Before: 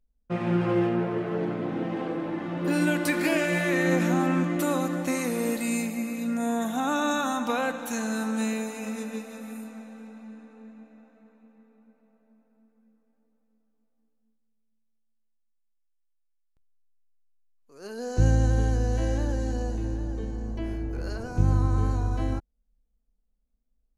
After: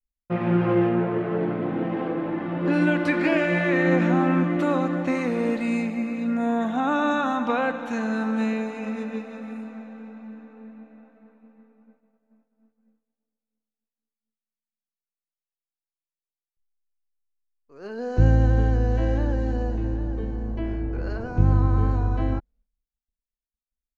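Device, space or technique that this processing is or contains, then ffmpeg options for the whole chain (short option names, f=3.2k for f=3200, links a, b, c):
hearing-loss simulation: -af "lowpass=2.7k,agate=range=-33dB:threshold=-56dB:ratio=3:detection=peak,volume=3.5dB"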